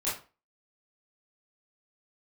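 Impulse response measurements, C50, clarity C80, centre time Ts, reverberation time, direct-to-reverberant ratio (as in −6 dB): 5.5 dB, 12.0 dB, 38 ms, 0.35 s, −10.0 dB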